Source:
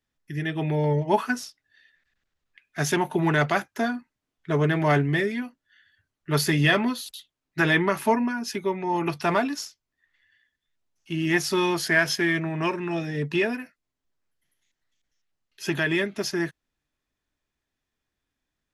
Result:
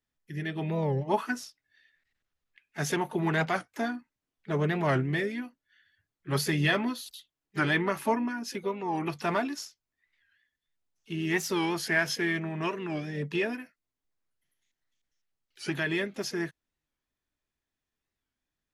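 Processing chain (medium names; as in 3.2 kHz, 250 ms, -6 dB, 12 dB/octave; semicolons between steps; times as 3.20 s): harmony voices +4 st -17 dB; warped record 45 rpm, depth 160 cents; trim -5.5 dB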